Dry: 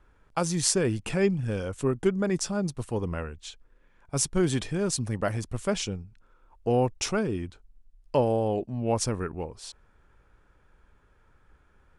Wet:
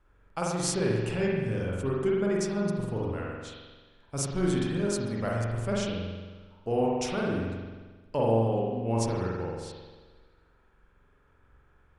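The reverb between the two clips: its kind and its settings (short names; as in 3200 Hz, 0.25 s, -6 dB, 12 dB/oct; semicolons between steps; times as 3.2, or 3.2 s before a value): spring tank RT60 1.4 s, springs 44 ms, chirp 35 ms, DRR -4 dB; gain -6.5 dB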